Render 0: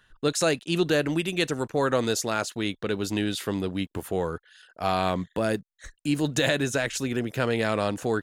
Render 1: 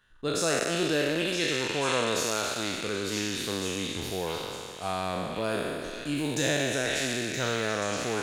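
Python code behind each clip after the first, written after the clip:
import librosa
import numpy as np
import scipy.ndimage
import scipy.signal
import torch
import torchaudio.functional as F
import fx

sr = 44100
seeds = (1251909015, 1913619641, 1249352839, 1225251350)

y = fx.spec_trails(x, sr, decay_s=2.32)
y = fx.echo_stepped(y, sr, ms=485, hz=2900.0, octaves=0.7, feedback_pct=70, wet_db=-0.5)
y = y * librosa.db_to_amplitude(-7.5)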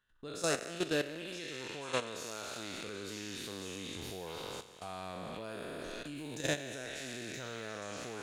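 y = fx.level_steps(x, sr, step_db=13)
y = y * librosa.db_to_amplitude(-4.0)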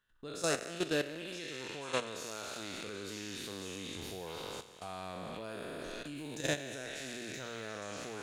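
y = fx.hum_notches(x, sr, base_hz=60, count=2)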